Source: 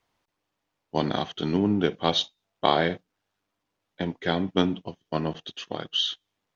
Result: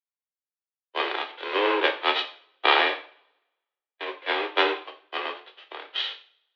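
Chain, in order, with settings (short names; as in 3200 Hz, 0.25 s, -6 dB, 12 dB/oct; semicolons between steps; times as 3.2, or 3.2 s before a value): spectral whitening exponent 0.3; mistuned SSB +120 Hz 270–3300 Hz; two-slope reverb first 0.53 s, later 2.5 s, from -25 dB, DRR 4 dB; three-band expander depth 70%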